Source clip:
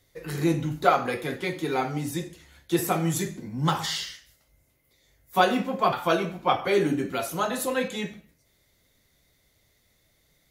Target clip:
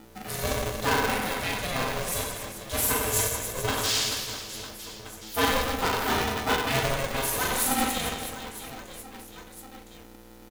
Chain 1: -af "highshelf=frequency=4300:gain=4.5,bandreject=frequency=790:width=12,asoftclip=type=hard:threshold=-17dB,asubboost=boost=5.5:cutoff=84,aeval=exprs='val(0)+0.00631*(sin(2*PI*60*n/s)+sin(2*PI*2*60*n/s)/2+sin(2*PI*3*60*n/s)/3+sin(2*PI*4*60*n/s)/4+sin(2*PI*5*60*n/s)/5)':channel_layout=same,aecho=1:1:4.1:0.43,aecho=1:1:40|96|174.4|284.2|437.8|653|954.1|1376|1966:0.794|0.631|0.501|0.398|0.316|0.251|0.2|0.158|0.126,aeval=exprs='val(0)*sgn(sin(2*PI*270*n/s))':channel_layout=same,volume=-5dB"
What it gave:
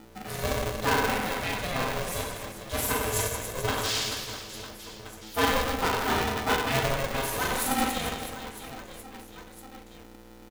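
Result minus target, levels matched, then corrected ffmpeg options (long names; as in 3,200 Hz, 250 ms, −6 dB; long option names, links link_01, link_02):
8,000 Hz band −3.0 dB
-af "highshelf=frequency=4300:gain=11.5,bandreject=frequency=790:width=12,asoftclip=type=hard:threshold=-17dB,asubboost=boost=5.5:cutoff=84,aeval=exprs='val(0)+0.00631*(sin(2*PI*60*n/s)+sin(2*PI*2*60*n/s)/2+sin(2*PI*3*60*n/s)/3+sin(2*PI*4*60*n/s)/4+sin(2*PI*5*60*n/s)/5)':channel_layout=same,aecho=1:1:4.1:0.43,aecho=1:1:40|96|174.4|284.2|437.8|653|954.1|1376|1966:0.794|0.631|0.501|0.398|0.316|0.251|0.2|0.158|0.126,aeval=exprs='val(0)*sgn(sin(2*PI*270*n/s))':channel_layout=same,volume=-5dB"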